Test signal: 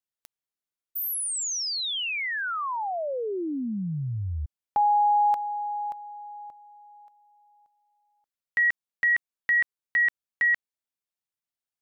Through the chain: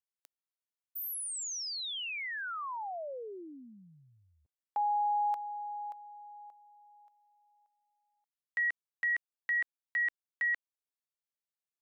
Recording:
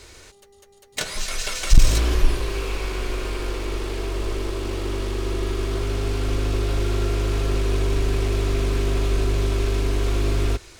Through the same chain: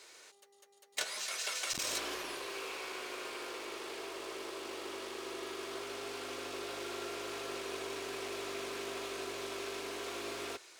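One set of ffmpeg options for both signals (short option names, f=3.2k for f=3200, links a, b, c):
-af "highpass=500,volume=-8.5dB"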